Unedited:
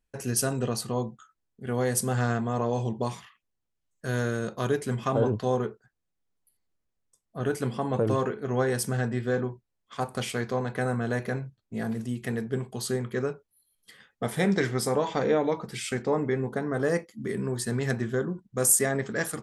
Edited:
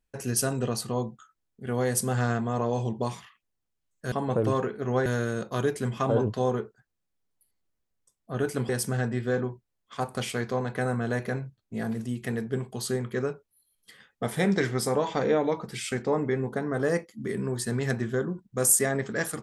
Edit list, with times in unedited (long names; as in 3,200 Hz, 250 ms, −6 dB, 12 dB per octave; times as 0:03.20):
0:07.75–0:08.69: move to 0:04.12